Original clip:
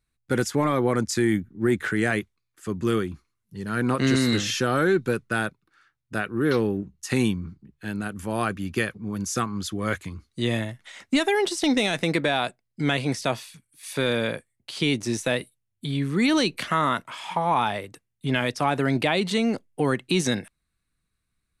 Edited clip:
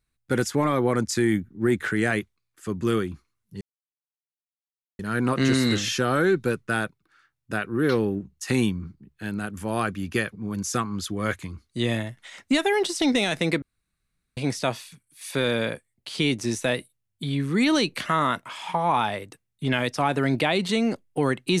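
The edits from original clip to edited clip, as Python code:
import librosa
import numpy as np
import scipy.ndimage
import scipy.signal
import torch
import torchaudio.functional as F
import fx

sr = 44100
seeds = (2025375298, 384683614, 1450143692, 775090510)

y = fx.edit(x, sr, fx.insert_silence(at_s=3.61, length_s=1.38),
    fx.room_tone_fill(start_s=12.24, length_s=0.75), tone=tone)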